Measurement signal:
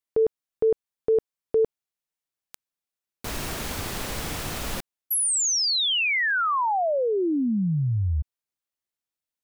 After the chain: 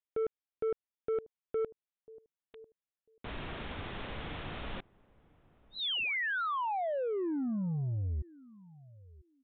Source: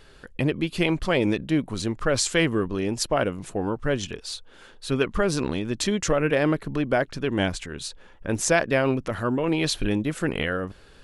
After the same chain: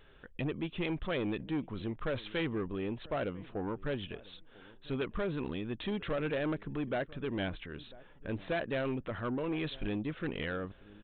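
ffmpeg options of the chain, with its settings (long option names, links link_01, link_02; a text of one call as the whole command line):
ffmpeg -i in.wav -filter_complex "[0:a]asplit=2[link_01][link_02];[link_02]adelay=996,lowpass=frequency=800:poles=1,volume=-23dB,asplit=2[link_03][link_04];[link_04]adelay=996,lowpass=frequency=800:poles=1,volume=0.18[link_05];[link_01][link_03][link_05]amix=inputs=3:normalize=0,aresample=8000,asoftclip=type=tanh:threshold=-20dB,aresample=44100,volume=-8dB" out.wav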